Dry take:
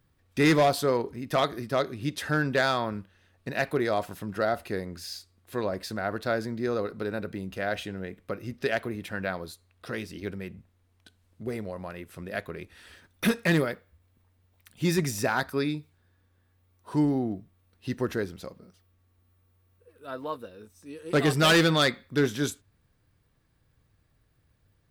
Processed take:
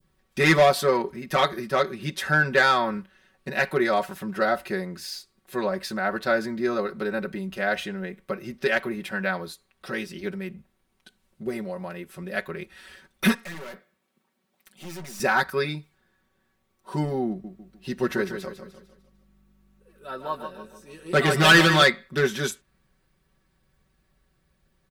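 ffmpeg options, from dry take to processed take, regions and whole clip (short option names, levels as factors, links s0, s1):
-filter_complex "[0:a]asettb=1/sr,asplit=3[s0][s1][s2];[s0]atrim=end=13.344[s3];[s1]atrim=start=13.34:end=15.2,asetpts=PTS-STARTPTS,afade=t=in:d=0.004:c=qsin,afade=t=out:st=1.856:d=0.004:c=qsin,highpass=f=160:w=0.5412,highpass=f=160:w=1.3066,aeval=exprs='(tanh(112*val(0)+0.3)-tanh(0.3))/112':c=same[s4];[s2]atrim=start=15.196[s5];[s3][s4]acrossfade=d=0.004:c1=hsin:c2=qsin[s6];[s6][s5]acrossfade=d=0.004:c1=qsin:c2=hsin,asettb=1/sr,asplit=3[s7][s8][s9];[s7]atrim=end=17.294[s10];[s8]atrim=start=17.29:end=21.84,asetpts=PTS-STARTPTS,afade=t=in:d=0.004:c=qsin,afade=t=out:st=4.546:d=0.004:c=qsin,aeval=exprs='val(0)+0.001*(sin(2*PI*50*n/s)+sin(2*PI*2*50*n/s)/2+sin(2*PI*3*50*n/s)/3+sin(2*PI*4*50*n/s)/4+sin(2*PI*5*50*n/s)/5)':c=same,aecho=1:1:150|300|450|600|750:0.376|0.158|0.0663|0.0278|0.0117,atrim=end_sample=200655[s11];[s9]atrim=start=21.836[s12];[s10][s11]acrossfade=d=0.004:c1=hsin:c2=qsin[s13];[s13][s12]acrossfade=d=0.004:c1=qsin:c2=hsin,equalizer=f=120:t=o:w=0.45:g=-4.5,aecho=1:1:5.3:0.91,adynamicequalizer=threshold=0.0158:dfrequency=1700:dqfactor=0.81:tfrequency=1700:tqfactor=0.81:attack=5:release=100:ratio=0.375:range=2.5:mode=boostabove:tftype=bell"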